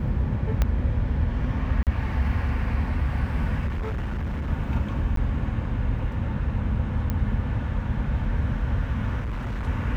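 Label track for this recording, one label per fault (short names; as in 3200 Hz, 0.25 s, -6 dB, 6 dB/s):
0.620000	0.620000	pop -10 dBFS
1.830000	1.870000	gap 38 ms
3.660000	4.500000	clipped -25 dBFS
5.160000	5.170000	gap
7.100000	7.100000	pop -15 dBFS
9.210000	9.680000	clipped -26 dBFS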